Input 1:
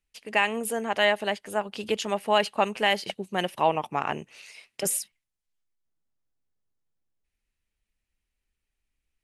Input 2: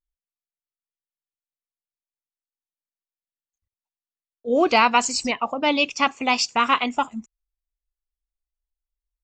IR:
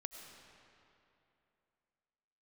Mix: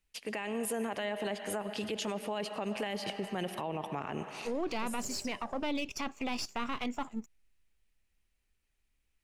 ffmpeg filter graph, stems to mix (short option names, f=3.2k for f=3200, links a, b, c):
-filter_complex "[0:a]acompressor=threshold=-30dB:ratio=1.5,volume=-0.5dB,asplit=2[a][b];[b]volume=-4dB[c];[1:a]aeval=exprs='if(lt(val(0),0),0.447*val(0),val(0))':c=same,volume=-3.5dB,asplit=2[d][e];[e]apad=whole_len=407243[f];[a][f]sidechaincompress=threshold=-41dB:ratio=8:attack=16:release=156[g];[2:a]atrim=start_sample=2205[h];[c][h]afir=irnorm=-1:irlink=0[i];[g][d][i]amix=inputs=3:normalize=0,acrossover=split=440[j][k];[k]acompressor=threshold=-30dB:ratio=6[l];[j][l]amix=inputs=2:normalize=0,alimiter=level_in=2.5dB:limit=-24dB:level=0:latency=1:release=27,volume=-2.5dB"